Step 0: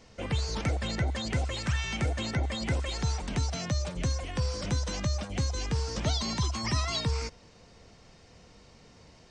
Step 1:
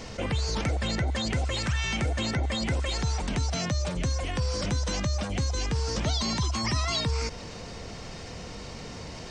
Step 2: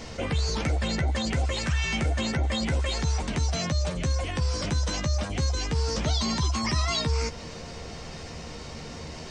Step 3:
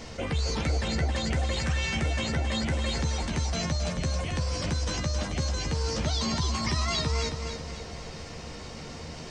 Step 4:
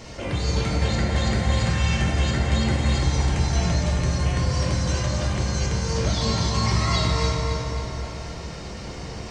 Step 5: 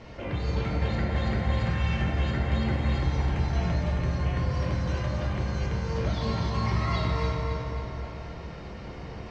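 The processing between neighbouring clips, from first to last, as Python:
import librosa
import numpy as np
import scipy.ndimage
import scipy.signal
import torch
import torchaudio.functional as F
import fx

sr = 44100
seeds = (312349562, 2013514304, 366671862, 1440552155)

y1 = fx.env_flatten(x, sr, amount_pct=50)
y2 = fx.doubler(y1, sr, ms=13.0, db=-7.0)
y3 = fx.echo_feedback(y2, sr, ms=270, feedback_pct=46, wet_db=-7.0)
y3 = y3 * 10.0 ** (-2.0 / 20.0)
y4 = fx.rev_fdn(y3, sr, rt60_s=3.2, lf_ratio=1.0, hf_ratio=0.45, size_ms=50.0, drr_db=-4.5)
y5 = scipy.signal.sosfilt(scipy.signal.butter(2, 2800.0, 'lowpass', fs=sr, output='sos'), y4)
y5 = y5 * 10.0 ** (-4.5 / 20.0)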